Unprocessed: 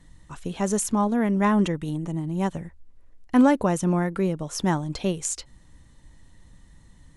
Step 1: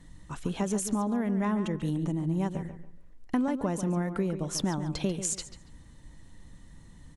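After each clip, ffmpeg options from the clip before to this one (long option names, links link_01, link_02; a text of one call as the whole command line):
ffmpeg -i in.wav -filter_complex "[0:a]equalizer=frequency=230:width=0.86:gain=3,acompressor=threshold=-26dB:ratio=6,asplit=2[link_01][link_02];[link_02]adelay=141,lowpass=frequency=4000:poles=1,volume=-10dB,asplit=2[link_03][link_04];[link_04]adelay=141,lowpass=frequency=4000:poles=1,volume=0.28,asplit=2[link_05][link_06];[link_06]adelay=141,lowpass=frequency=4000:poles=1,volume=0.28[link_07];[link_01][link_03][link_05][link_07]amix=inputs=4:normalize=0" out.wav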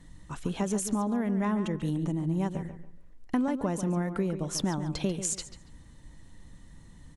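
ffmpeg -i in.wav -af anull out.wav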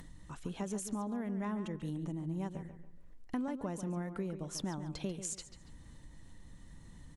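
ffmpeg -i in.wav -af "acompressor=mode=upward:threshold=-34dB:ratio=2.5,volume=-9dB" out.wav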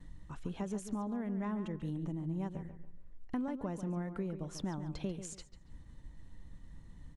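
ffmpeg -i in.wav -af "aemphasis=mode=reproduction:type=cd,agate=range=-33dB:threshold=-48dB:ratio=3:detection=peak,lowshelf=frequency=93:gain=6.5,volume=-1dB" out.wav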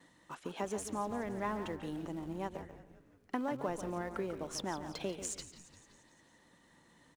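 ffmpeg -i in.wav -filter_complex "[0:a]highpass=410,asplit=2[link_01][link_02];[link_02]aeval=exprs='val(0)*gte(abs(val(0)),0.00422)':channel_layout=same,volume=-11.5dB[link_03];[link_01][link_03]amix=inputs=2:normalize=0,asplit=7[link_04][link_05][link_06][link_07][link_08][link_09][link_10];[link_05]adelay=173,afreqshift=-120,volume=-15dB[link_11];[link_06]adelay=346,afreqshift=-240,volume=-19.4dB[link_12];[link_07]adelay=519,afreqshift=-360,volume=-23.9dB[link_13];[link_08]adelay=692,afreqshift=-480,volume=-28.3dB[link_14];[link_09]adelay=865,afreqshift=-600,volume=-32.7dB[link_15];[link_10]adelay=1038,afreqshift=-720,volume=-37.2dB[link_16];[link_04][link_11][link_12][link_13][link_14][link_15][link_16]amix=inputs=7:normalize=0,volume=5dB" out.wav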